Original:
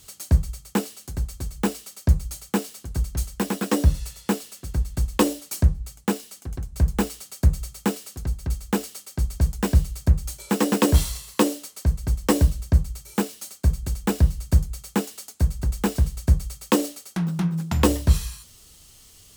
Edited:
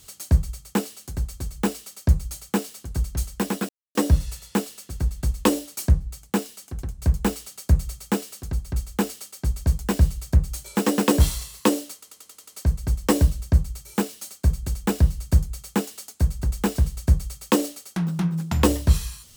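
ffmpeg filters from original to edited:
-filter_complex "[0:a]asplit=8[a][b][c][d][e][f][g][h];[a]atrim=end=3.69,asetpts=PTS-STARTPTS,afade=t=out:st=3.686:d=0.004:c=hsin,apad=pad_dur=0.26[i];[b]atrim=start=3.69:end=11.772,asetpts=PTS-STARTPTS,afade=t=in:d=0.004:c=hsin[j];[c]atrim=start=11.678:end=11.772[k];[d]atrim=start=11.678:end=11.772[l];[e]atrim=start=11.678:end=11.772[m];[f]atrim=start=11.678:end=11.772[n];[g]atrim=start=11.678:end=11.772[o];[h]atrim=start=11.678[p];[i][j]concat=n=2:v=0:a=1[q];[q][k]acrossfade=d=0.004:c1=hsin:c2=hsin[r];[r][l]acrossfade=d=0.004:c1=hsin:c2=hsin[s];[s][m]acrossfade=d=0.004:c1=hsin:c2=hsin[t];[t][n]acrossfade=d=0.004:c1=hsin:c2=hsin[u];[u][o]acrossfade=d=0.004:c1=hsin:c2=hsin[v];[v][p]acrossfade=d=0.004:c1=hsin:c2=hsin"

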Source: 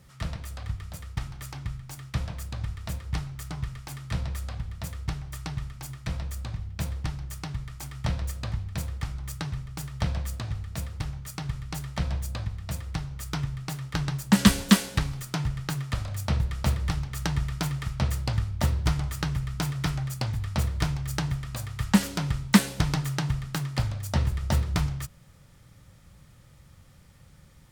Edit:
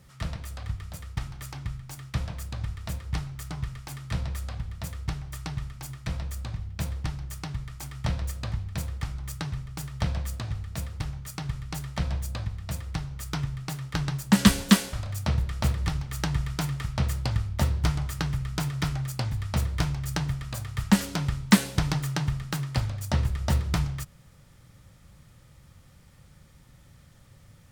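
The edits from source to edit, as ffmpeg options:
-filter_complex "[0:a]asplit=2[a][b];[a]atrim=end=14.932[c];[b]atrim=start=15.948[d];[c][d]acrossfade=d=0.004:c1=hsin:c2=hsin"

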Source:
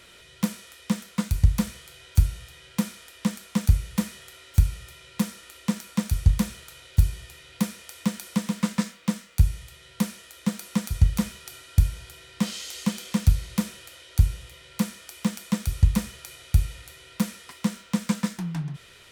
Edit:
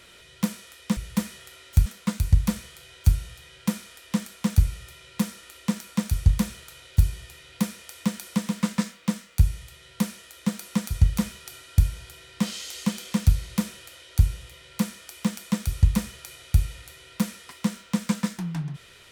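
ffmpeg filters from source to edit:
-filter_complex "[0:a]asplit=4[a][b][c][d];[a]atrim=end=0.972[e];[b]atrim=start=3.778:end=4.672[f];[c]atrim=start=0.968:end=3.782[g];[d]atrim=start=4.668[h];[e][f]acrossfade=d=0.004:c1=hsin:c2=hsin[i];[i][g]acrossfade=d=0.004:c1=hsin:c2=hsin[j];[j][h]acrossfade=d=0.004:c1=hsin:c2=hsin"

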